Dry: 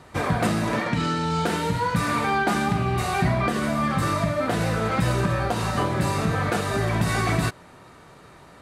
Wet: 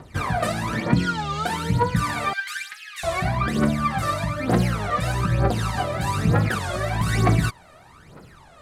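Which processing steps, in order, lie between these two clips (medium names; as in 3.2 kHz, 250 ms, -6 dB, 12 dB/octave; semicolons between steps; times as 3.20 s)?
2.33–3.05 s: Chebyshev high-pass 1.6 kHz, order 4; phaser 1.1 Hz, delay 1.7 ms, feedback 74%; warped record 33 1/3 rpm, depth 160 cents; trim -3.5 dB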